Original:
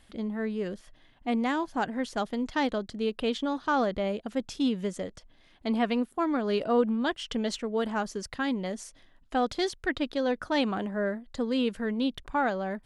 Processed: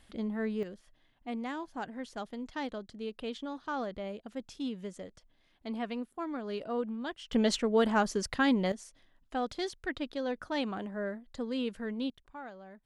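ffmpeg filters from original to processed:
-af "asetnsamples=n=441:p=0,asendcmd='0.63 volume volume -9.5dB;7.33 volume volume 3dB;8.72 volume volume -6.5dB;12.1 volume volume -18dB',volume=0.794"

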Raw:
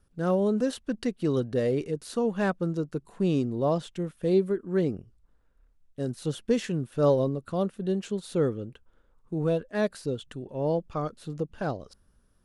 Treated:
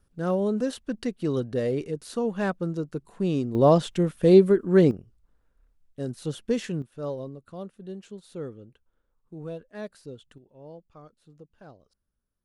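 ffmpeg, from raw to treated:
-af "asetnsamples=n=441:p=0,asendcmd='3.55 volume volume 8dB;4.91 volume volume -1dB;6.82 volume volume -10.5dB;10.38 volume volume -18dB',volume=0.944"

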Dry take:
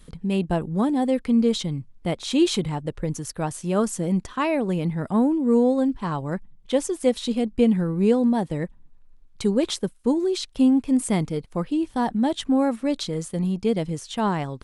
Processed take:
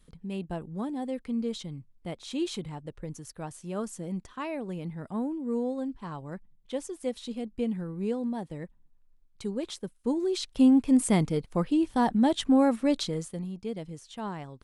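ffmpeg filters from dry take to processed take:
-af "volume=0.891,afade=t=in:st=9.81:d=0.98:silence=0.298538,afade=t=out:st=12.94:d=0.52:silence=0.266073"

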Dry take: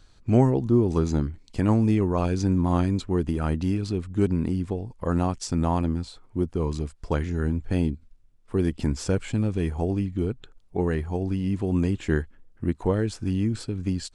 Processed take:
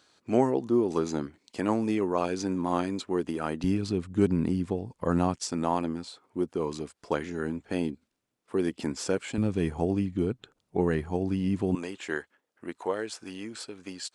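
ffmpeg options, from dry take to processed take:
-af "asetnsamples=n=441:p=0,asendcmd='3.64 highpass f 130;5.36 highpass f 280;9.38 highpass f 130;11.75 highpass f 540',highpass=310"

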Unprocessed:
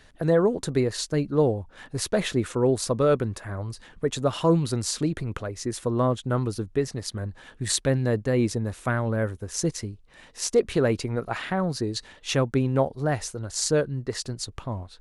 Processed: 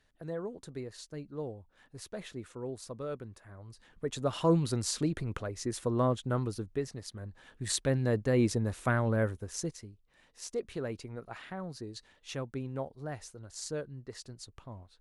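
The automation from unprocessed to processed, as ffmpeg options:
-af "volume=1.58,afade=t=in:st=3.62:d=0.9:silence=0.237137,afade=t=out:st=6.14:d=1.01:silence=0.446684,afade=t=in:st=7.15:d=1.36:silence=0.354813,afade=t=out:st=9.22:d=0.56:silence=0.266073"

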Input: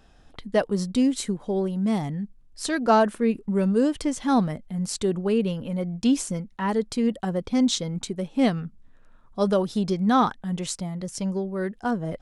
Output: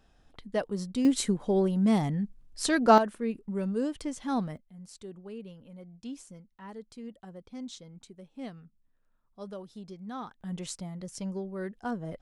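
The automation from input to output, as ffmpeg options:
-af "asetnsamples=n=441:p=0,asendcmd='1.05 volume volume 0dB;2.98 volume volume -9dB;4.57 volume volume -19.5dB;10.41 volume volume -8dB',volume=0.398"

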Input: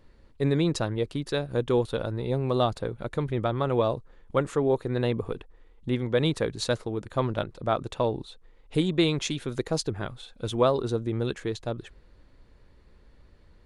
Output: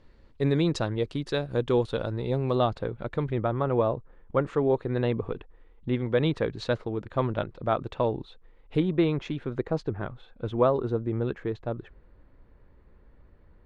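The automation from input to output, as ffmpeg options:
-af "asetnsamples=n=441:p=0,asendcmd='2.55 lowpass f 3300;3.38 lowpass f 1900;4.45 lowpass f 3000;8.8 lowpass f 1800',lowpass=6100"

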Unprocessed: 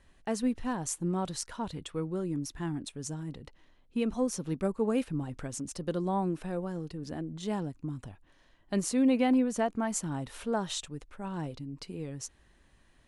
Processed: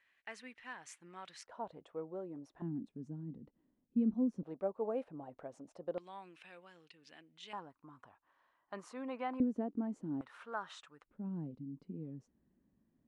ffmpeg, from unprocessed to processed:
-af "asetnsamples=n=441:p=0,asendcmd='1.45 bandpass f 660;2.62 bandpass f 230;4.43 bandpass f 660;5.98 bandpass f 2600;7.53 bandpass f 1100;9.4 bandpass f 290;10.21 bandpass f 1300;11.06 bandpass f 220',bandpass=f=2100:t=q:w=2.5:csg=0"

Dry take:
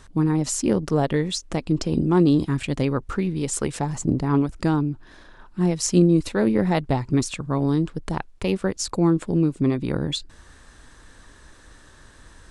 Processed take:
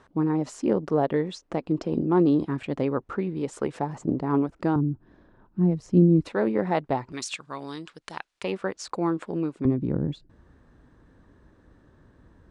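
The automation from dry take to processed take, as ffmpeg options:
-af "asetnsamples=n=441:p=0,asendcmd='4.76 bandpass f 170;6.25 bandpass f 790;7.12 bandpass f 3100;8.44 bandpass f 1100;9.65 bandpass f 190',bandpass=f=590:t=q:w=0.59:csg=0"

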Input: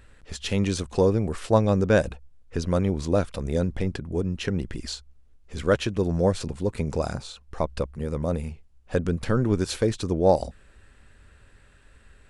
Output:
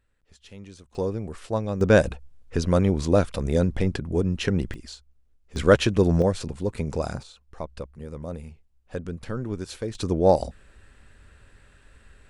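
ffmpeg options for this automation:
-af "asetnsamples=n=441:p=0,asendcmd='0.95 volume volume -7dB;1.81 volume volume 3dB;4.74 volume volume -7.5dB;5.56 volume volume 5dB;6.22 volume volume -1dB;7.23 volume volume -8dB;9.95 volume volume 1dB',volume=0.112"

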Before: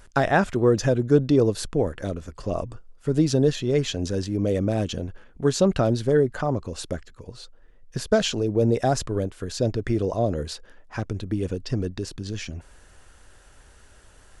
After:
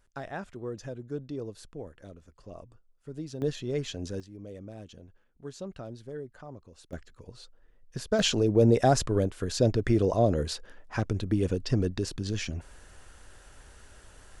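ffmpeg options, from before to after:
-af "asetnsamples=n=441:p=0,asendcmd='3.42 volume volume -9dB;4.2 volume volume -20dB;6.93 volume volume -7dB;8.19 volume volume 0dB',volume=0.126"

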